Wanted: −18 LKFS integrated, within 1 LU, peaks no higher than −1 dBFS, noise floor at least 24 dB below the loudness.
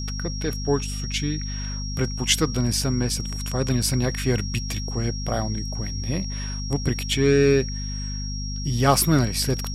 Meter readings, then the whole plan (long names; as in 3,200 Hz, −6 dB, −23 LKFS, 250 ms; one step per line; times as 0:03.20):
mains hum 50 Hz; hum harmonics up to 250 Hz; level of the hum −27 dBFS; interfering tone 5,600 Hz; level of the tone −34 dBFS; integrated loudness −24.0 LKFS; sample peak −5.0 dBFS; target loudness −18.0 LKFS
→ hum removal 50 Hz, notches 5
notch filter 5,600 Hz, Q 30
level +6 dB
brickwall limiter −1 dBFS